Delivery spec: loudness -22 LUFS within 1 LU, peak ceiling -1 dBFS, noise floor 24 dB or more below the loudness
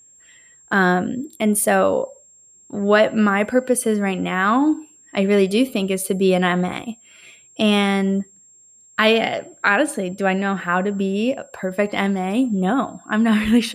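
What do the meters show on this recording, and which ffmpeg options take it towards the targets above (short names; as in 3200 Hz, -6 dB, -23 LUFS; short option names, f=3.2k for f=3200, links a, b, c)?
steady tone 7500 Hz; tone level -48 dBFS; loudness -19.5 LUFS; peak -3.0 dBFS; loudness target -22.0 LUFS
-> -af "bandreject=f=7.5k:w=30"
-af "volume=-2.5dB"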